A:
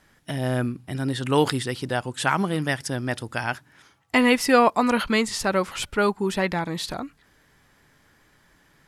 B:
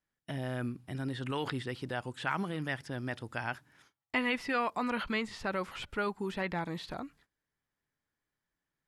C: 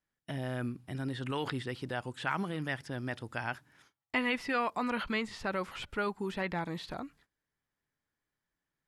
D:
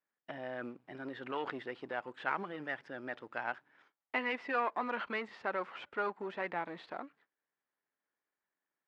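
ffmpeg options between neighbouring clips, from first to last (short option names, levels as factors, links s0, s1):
-filter_complex "[0:a]acrossover=split=3800[s0][s1];[s1]acompressor=threshold=0.00355:ratio=4:attack=1:release=60[s2];[s0][s2]amix=inputs=2:normalize=0,agate=range=0.0891:threshold=0.00224:ratio=16:detection=peak,acrossover=split=1200[s3][s4];[s3]alimiter=limit=0.106:level=0:latency=1[s5];[s5][s4]amix=inputs=2:normalize=0,volume=0.376"
-af anull
-af "aeval=exprs='if(lt(val(0),0),0.447*val(0),val(0))':c=same,acrusher=bits=8:mode=log:mix=0:aa=0.000001,highpass=360,lowpass=2200,volume=1.26"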